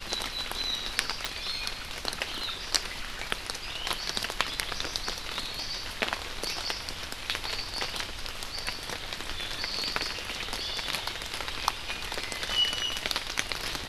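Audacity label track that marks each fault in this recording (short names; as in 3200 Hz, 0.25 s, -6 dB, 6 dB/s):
1.250000	1.250000	pop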